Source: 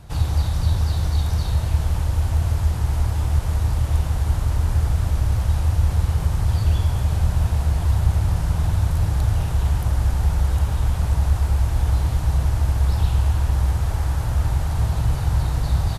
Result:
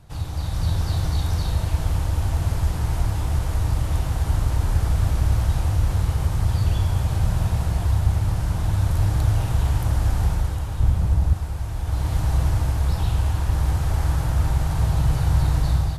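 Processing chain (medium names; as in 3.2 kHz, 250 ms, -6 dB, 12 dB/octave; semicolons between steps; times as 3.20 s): 10.80–11.34 s: bass shelf 480 Hz +8.5 dB; level rider gain up to 10 dB; on a send: reverberation RT60 0.45 s, pre-delay 6 ms, DRR 11 dB; on the sum: trim -6.5 dB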